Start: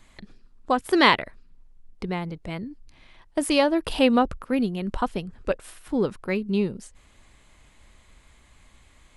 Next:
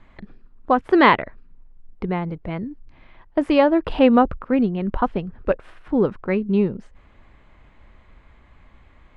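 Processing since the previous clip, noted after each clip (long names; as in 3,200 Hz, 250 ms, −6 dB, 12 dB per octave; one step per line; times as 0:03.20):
low-pass filter 1,900 Hz 12 dB per octave
level +5 dB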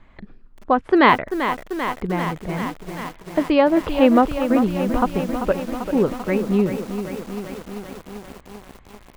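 feedback echo at a low word length 391 ms, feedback 80%, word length 6 bits, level −9 dB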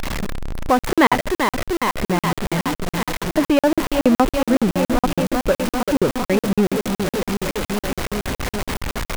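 converter with a step at zero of −17 dBFS
regular buffer underruns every 0.14 s, samples 2,048, zero, from 0:00.79
level −1 dB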